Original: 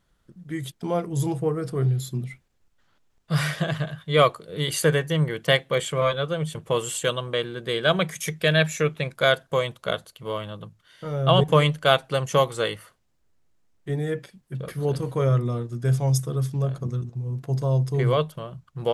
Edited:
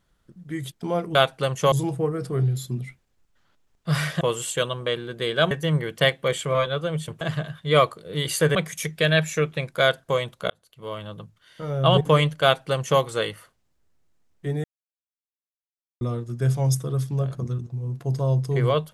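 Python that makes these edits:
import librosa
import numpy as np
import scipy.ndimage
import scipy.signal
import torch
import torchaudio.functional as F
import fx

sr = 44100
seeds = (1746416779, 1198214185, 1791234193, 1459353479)

y = fx.edit(x, sr, fx.swap(start_s=3.64, length_s=1.34, other_s=6.68, other_length_s=1.3),
    fx.fade_in_span(start_s=9.93, length_s=0.62),
    fx.duplicate(start_s=11.86, length_s=0.57, to_s=1.15),
    fx.silence(start_s=14.07, length_s=1.37), tone=tone)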